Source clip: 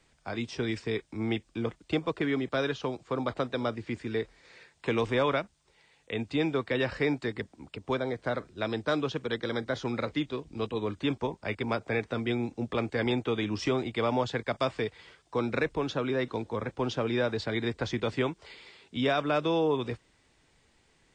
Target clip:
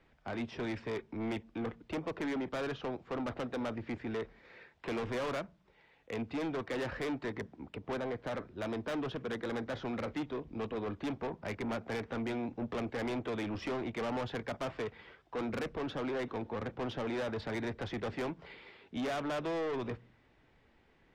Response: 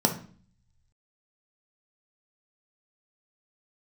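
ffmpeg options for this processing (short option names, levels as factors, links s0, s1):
-filter_complex "[0:a]lowpass=2400,asoftclip=type=tanh:threshold=0.02,asplit=2[s0][s1];[1:a]atrim=start_sample=2205[s2];[s1][s2]afir=irnorm=-1:irlink=0,volume=0.0266[s3];[s0][s3]amix=inputs=2:normalize=0"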